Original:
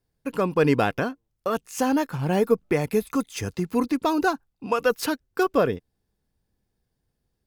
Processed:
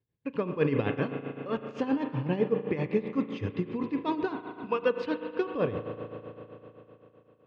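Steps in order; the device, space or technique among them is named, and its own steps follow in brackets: combo amplifier with spring reverb and tremolo (spring tank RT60 3.6 s, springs 36 ms, chirp 40 ms, DRR 5.5 dB; tremolo 7.8 Hz, depth 73%; speaker cabinet 82–3400 Hz, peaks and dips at 110 Hz +8 dB, 710 Hz -9 dB, 1400 Hz -9 dB); gain -2.5 dB

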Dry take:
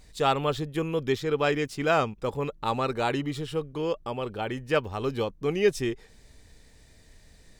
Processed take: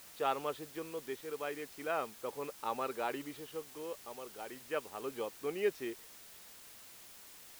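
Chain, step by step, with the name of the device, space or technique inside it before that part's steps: shortwave radio (BPF 320–2800 Hz; tremolo 0.36 Hz, depth 47%; white noise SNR 14 dB); gain -8.5 dB

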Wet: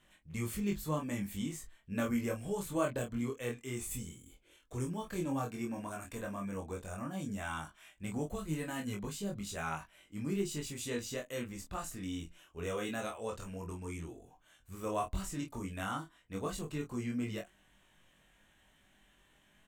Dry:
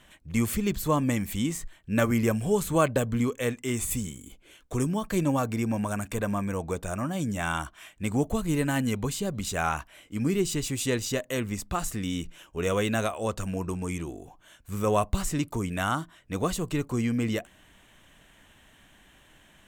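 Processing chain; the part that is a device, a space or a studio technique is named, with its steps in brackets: double-tracked vocal (doubler 25 ms -5 dB; chorus 0.11 Hz, delay 19.5 ms, depth 3.3 ms); gain -8.5 dB

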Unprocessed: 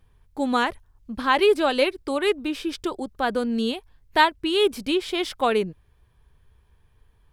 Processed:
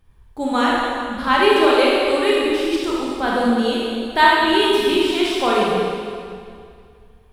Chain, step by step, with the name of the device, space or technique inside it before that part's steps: stairwell (reverb RT60 2.2 s, pre-delay 26 ms, DRR -5.5 dB)

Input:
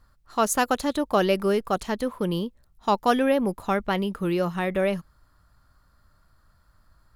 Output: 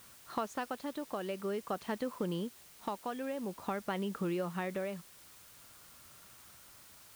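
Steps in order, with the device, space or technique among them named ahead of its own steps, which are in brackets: medium wave at night (BPF 130–3800 Hz; compressor 5:1, threshold -36 dBFS, peak gain reduction 18.5 dB; tremolo 0.48 Hz, depth 39%; whine 9000 Hz -70 dBFS; white noise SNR 18 dB); gain +2.5 dB

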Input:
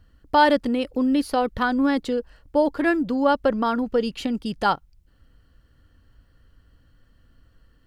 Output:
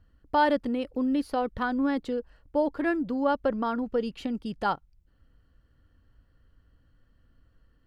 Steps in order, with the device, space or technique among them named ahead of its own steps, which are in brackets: behind a face mask (high shelf 3100 Hz -7.5 dB); gain -5.5 dB

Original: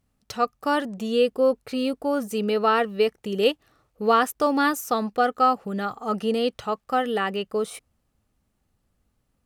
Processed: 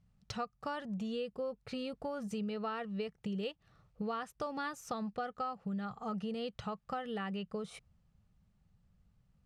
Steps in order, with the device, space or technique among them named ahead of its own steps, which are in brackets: jukebox (LPF 6300 Hz 12 dB/oct; resonant low shelf 220 Hz +7 dB, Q 3; compressor 5:1, threshold -31 dBFS, peak gain reduction 14.5 dB); gain -5.5 dB

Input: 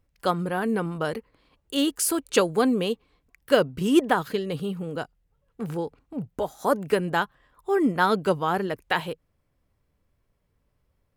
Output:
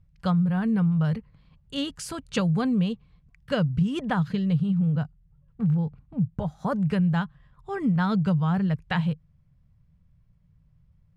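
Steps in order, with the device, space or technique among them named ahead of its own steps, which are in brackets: jukebox (LPF 5600 Hz 12 dB/oct; resonant low shelf 230 Hz +13 dB, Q 3; compressor 4:1, threshold -17 dBFS, peak gain reduction 8.5 dB); 4.9–6.72 bell 6800 Hz -6 dB 2.3 oct; gain -3.5 dB

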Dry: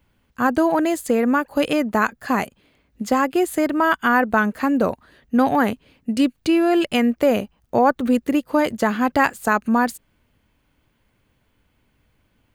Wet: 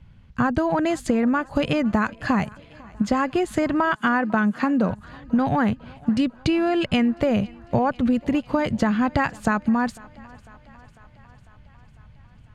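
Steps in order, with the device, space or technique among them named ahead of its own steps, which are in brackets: 3.95–4.9 HPF 160 Hz 24 dB/oct; jukebox (LPF 5400 Hz 12 dB/oct; resonant low shelf 220 Hz +11 dB, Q 1.5; compressor 5:1, threshold -23 dBFS, peak gain reduction 11 dB); thinning echo 0.499 s, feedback 67%, high-pass 260 Hz, level -22.5 dB; gain +4.5 dB

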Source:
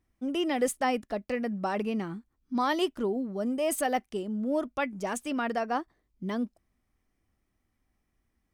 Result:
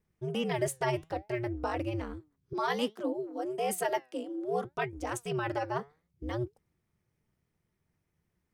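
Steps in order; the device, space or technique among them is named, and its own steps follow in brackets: alien voice (ring modulator 120 Hz; flange 0.61 Hz, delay 2 ms, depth 6 ms, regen +87%); 2.53–4.65 steep high-pass 190 Hz 48 dB/oct; gain +4.5 dB

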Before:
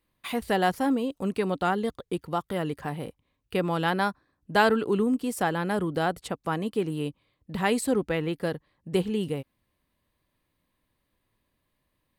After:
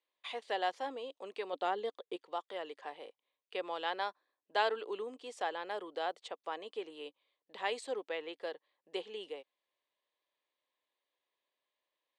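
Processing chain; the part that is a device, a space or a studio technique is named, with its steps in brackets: 1.53–2.16 low shelf 460 Hz +8.5 dB; phone speaker on a table (speaker cabinet 440–6700 Hz, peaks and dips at 1400 Hz -6 dB, 3400 Hz +5 dB, 5300 Hz -3 dB); gain -8.5 dB

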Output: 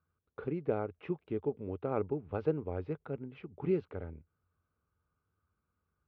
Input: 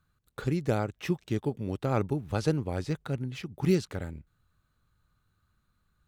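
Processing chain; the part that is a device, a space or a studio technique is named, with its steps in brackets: bass cabinet (speaker cabinet 81–2300 Hz, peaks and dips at 86 Hz +5 dB, 120 Hz -10 dB, 190 Hz -4 dB, 440 Hz +7 dB, 1800 Hz -9 dB); gain -6 dB

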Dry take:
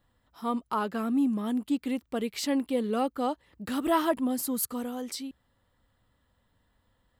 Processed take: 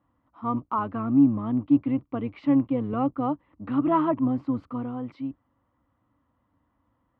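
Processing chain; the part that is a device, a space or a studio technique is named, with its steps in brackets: sub-octave bass pedal (octaver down 1 oct, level -4 dB; speaker cabinet 74–2200 Hz, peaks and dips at 170 Hz -4 dB, 290 Hz +10 dB, 420 Hz -7 dB, 1100 Hz +7 dB, 1700 Hz -9 dB)

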